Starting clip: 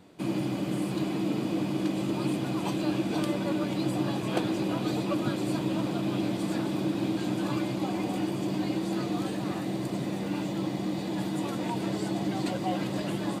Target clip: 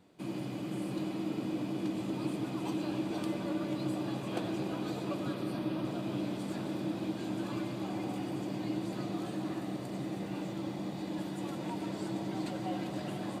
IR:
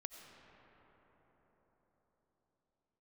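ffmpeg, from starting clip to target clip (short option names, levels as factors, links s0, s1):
-filter_complex "[0:a]asettb=1/sr,asplit=3[s0][s1][s2];[s0]atrim=end=5.344[s3];[s1]atrim=start=5.34:end=5.85,asetpts=PTS-STARTPTS,afade=t=in:d=0.004:c=qsin,afade=t=out:st=0.506:d=0.004:c=qsin,equalizer=f=7300:w=2.9:g=-11.5[s4];[s2]atrim=start=5.846[s5];[s3][s4]acrossfade=d=0.004:c1=hsin:c2=qsin[s6];[s6][s5]acrossfade=d=0.004:c1=qsin:c2=hsin[s7];[1:a]atrim=start_sample=2205[s8];[s7][s8]afir=irnorm=-1:irlink=0,volume=0.708"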